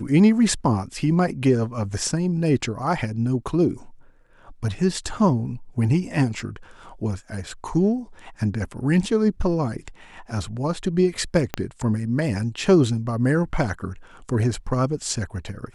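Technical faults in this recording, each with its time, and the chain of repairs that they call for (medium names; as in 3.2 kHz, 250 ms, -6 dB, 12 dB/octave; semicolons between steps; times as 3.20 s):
11.54 s: pop -9 dBFS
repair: de-click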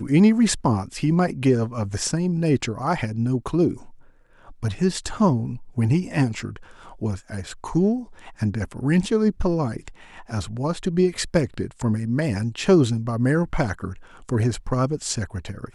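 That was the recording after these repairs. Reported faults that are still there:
11.54 s: pop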